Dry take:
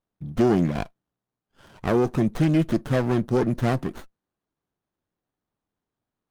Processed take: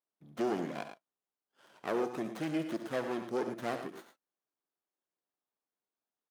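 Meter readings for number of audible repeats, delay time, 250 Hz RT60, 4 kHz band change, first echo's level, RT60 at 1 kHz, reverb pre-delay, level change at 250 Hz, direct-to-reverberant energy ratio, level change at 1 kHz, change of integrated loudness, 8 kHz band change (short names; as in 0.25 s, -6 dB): 2, 69 ms, none, -8.0 dB, -12.0 dB, none, none, -14.0 dB, none, -8.5 dB, -13.0 dB, -8.5 dB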